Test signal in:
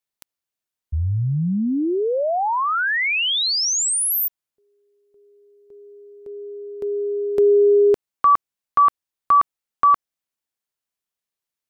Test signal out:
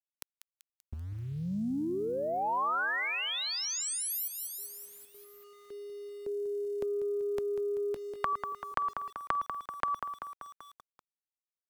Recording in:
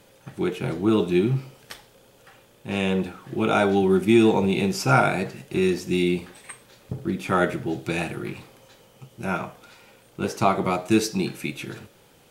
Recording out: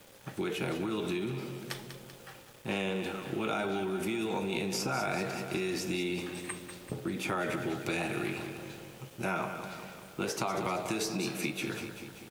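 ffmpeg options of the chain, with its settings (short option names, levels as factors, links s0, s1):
-filter_complex "[0:a]acompressor=threshold=0.0447:ratio=20:attack=11:release=50:knee=1:detection=peak,aecho=1:1:193|386|579|772|965|1158:0.282|0.161|0.0916|0.0522|0.0298|0.017,acrossover=split=230|1100[s0][s1][s2];[s0]acompressor=threshold=0.00447:ratio=2.5[s3];[s1]acompressor=threshold=0.02:ratio=5[s4];[s2]acompressor=threshold=0.0178:ratio=4[s5];[s3][s4][s5]amix=inputs=3:normalize=0,aeval=exprs='val(0)*gte(abs(val(0)),0.00224)':c=same,volume=1.12"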